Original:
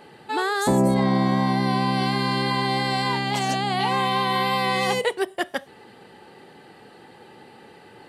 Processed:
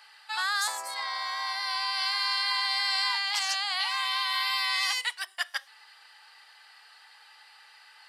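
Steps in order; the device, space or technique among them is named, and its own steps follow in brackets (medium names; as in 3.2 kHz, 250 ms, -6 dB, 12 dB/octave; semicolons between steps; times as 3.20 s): headphones lying on a table (high-pass 1.1 kHz 24 dB/octave; peaking EQ 5 kHz +10 dB 0.42 oct); 3.82–5.24 s: high-pass 1 kHz 6 dB/octave; trim -1.5 dB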